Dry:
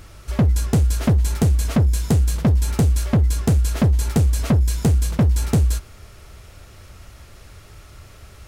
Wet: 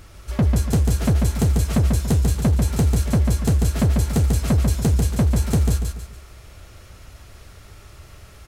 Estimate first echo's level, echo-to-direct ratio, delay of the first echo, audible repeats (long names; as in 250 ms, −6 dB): −4.0 dB, −3.5 dB, 143 ms, 4